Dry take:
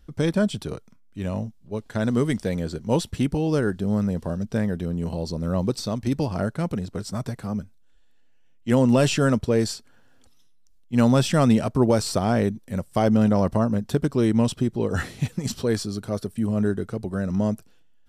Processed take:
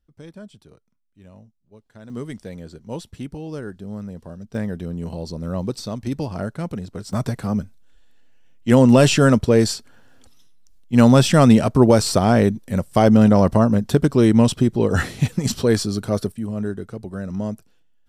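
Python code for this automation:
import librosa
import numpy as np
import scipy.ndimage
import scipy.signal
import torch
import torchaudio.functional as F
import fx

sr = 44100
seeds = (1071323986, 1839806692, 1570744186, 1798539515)

y = fx.gain(x, sr, db=fx.steps((0.0, -18.0), (2.1, -9.0), (4.55, -1.5), (7.13, 6.0), (16.32, -3.0)))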